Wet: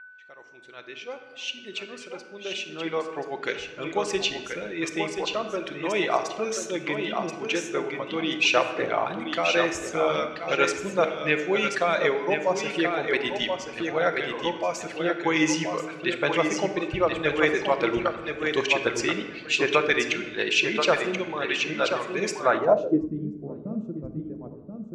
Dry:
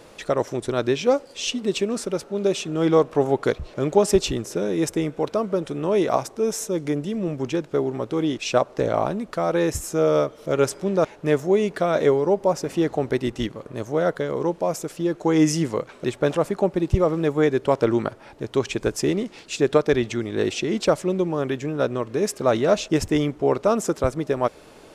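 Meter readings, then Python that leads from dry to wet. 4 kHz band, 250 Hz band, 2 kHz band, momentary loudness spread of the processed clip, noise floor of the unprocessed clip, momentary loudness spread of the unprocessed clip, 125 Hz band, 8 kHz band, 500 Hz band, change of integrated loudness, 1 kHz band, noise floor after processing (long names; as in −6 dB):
+4.0 dB, −6.5 dB, +7.5 dB, 12 LU, −47 dBFS, 7 LU, −10.5 dB, −3.0 dB, −5.5 dB, −3.0 dB, −0.5 dB, −45 dBFS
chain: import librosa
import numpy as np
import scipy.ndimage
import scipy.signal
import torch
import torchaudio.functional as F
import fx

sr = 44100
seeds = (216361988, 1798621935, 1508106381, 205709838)

y = fx.fade_in_head(x, sr, length_s=6.61)
y = fx.tilt_eq(y, sr, slope=3.5)
y = fx.echo_feedback(y, sr, ms=1031, feedback_pct=26, wet_db=-5)
y = fx.dereverb_blind(y, sr, rt60_s=2.0)
y = fx.hum_notches(y, sr, base_hz=60, count=2)
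y = y + 10.0 ** (-45.0 / 20.0) * np.sin(2.0 * np.pi * 1500.0 * np.arange(len(y)) / sr)
y = fx.notch(y, sr, hz=5200.0, q=13.0)
y = fx.room_shoebox(y, sr, seeds[0], volume_m3=1200.0, walls='mixed', distance_m=0.8)
y = fx.filter_sweep_lowpass(y, sr, from_hz=2500.0, to_hz=200.0, start_s=22.38, end_s=23.11, q=2.1)
y = fx.peak_eq(y, sr, hz=6100.0, db=7.5, octaves=1.1)
y = F.gain(torch.from_numpy(y), -1.5).numpy()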